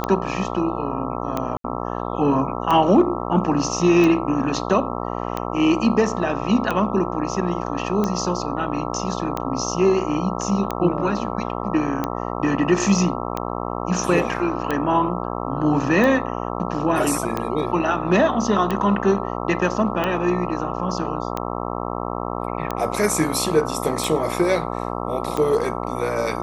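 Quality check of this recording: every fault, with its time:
buzz 60 Hz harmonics 22 -27 dBFS
tick 45 rpm -10 dBFS
1.57–1.64 gap 73 ms

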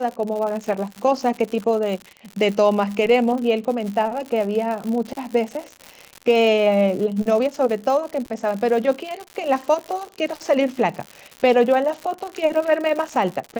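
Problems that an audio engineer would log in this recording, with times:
crackle 130/s -27 dBFS

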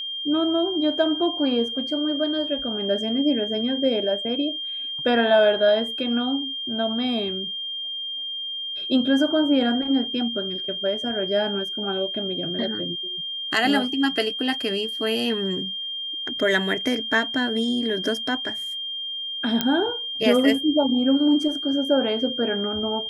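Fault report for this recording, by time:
tone 3200 Hz -28 dBFS
19.61 pop -6 dBFS

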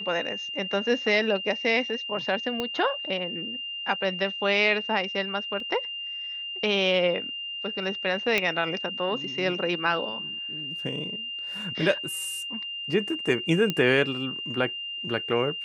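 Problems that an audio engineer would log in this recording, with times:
tone 2800 Hz -32 dBFS
2.6 pop -15 dBFS
5.6 gap 2.4 ms
8.38 pop -9 dBFS
13.7 pop -12 dBFS

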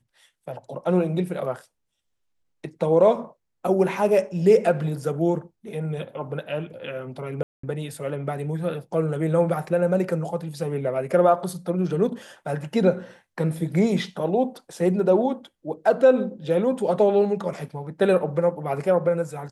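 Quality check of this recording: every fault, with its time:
7.43–7.63 gap 0.204 s

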